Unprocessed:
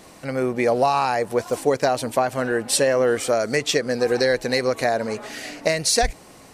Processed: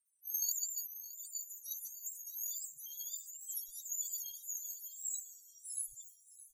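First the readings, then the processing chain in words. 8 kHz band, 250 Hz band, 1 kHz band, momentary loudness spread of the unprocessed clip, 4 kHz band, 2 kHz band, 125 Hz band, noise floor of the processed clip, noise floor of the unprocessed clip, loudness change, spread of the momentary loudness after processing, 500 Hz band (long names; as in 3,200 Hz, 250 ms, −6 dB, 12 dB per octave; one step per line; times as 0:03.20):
−9.0 dB, below −40 dB, below −40 dB, 7 LU, −25.0 dB, below −40 dB, below −40 dB, −66 dBFS, −47 dBFS, −18.5 dB, 9 LU, below −40 dB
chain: frequency axis turned over on the octave scale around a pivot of 1,300 Hz
bass and treble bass −14 dB, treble −9 dB
multi-voice chorus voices 4, 0.7 Hz, delay 26 ms, depth 1.4 ms
four-comb reverb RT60 1.6 s, combs from 31 ms, DRR 12 dB
in parallel at 0 dB: downward compressor, threshold −30 dBFS, peak gain reduction 13.5 dB
on the sum: inverse Chebyshev band-stop filter 180–2,200 Hz, stop band 70 dB
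gate on every frequency bin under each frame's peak −10 dB strong
amplitude tremolo 14 Hz, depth 41%
high-shelf EQ 11,000 Hz −6 dB
repeating echo 617 ms, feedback 44%, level −10.5 dB
multiband upward and downward expander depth 70%
level +13 dB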